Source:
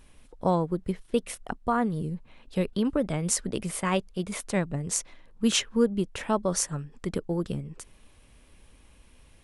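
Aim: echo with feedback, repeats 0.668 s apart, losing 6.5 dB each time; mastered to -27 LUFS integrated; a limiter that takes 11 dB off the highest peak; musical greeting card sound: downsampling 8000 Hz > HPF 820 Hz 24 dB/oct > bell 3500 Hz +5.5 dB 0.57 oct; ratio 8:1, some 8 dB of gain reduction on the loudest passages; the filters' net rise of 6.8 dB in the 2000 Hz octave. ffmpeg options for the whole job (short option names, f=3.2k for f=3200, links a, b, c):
-af "equalizer=f=2k:t=o:g=7.5,acompressor=threshold=-26dB:ratio=8,alimiter=limit=-23dB:level=0:latency=1,aecho=1:1:668|1336|2004|2672|3340|4008:0.473|0.222|0.105|0.0491|0.0231|0.0109,aresample=8000,aresample=44100,highpass=f=820:w=0.5412,highpass=f=820:w=1.3066,equalizer=f=3.5k:t=o:w=0.57:g=5.5,volume=13dB"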